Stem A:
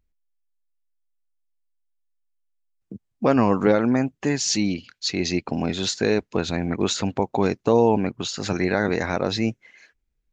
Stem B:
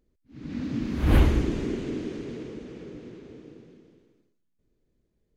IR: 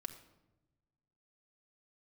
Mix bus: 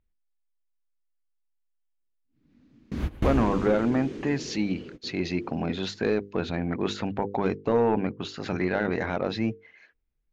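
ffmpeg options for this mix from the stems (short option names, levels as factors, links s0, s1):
-filter_complex "[0:a]lowpass=3000,bandreject=f=50:t=h:w=6,bandreject=f=100:t=h:w=6,bandreject=f=150:t=h:w=6,bandreject=f=200:t=h:w=6,bandreject=f=250:t=h:w=6,bandreject=f=300:t=h:w=6,bandreject=f=350:t=h:w=6,bandreject=f=400:t=h:w=6,bandreject=f=450:t=h:w=6,bandreject=f=500:t=h:w=6,volume=0.75,asplit=2[s0][s1];[1:a]adelay=2000,volume=0.794[s2];[s1]apad=whole_len=324917[s3];[s2][s3]sidechaingate=range=0.0501:threshold=0.00355:ratio=16:detection=peak[s4];[s0][s4]amix=inputs=2:normalize=0,asoftclip=type=tanh:threshold=0.211"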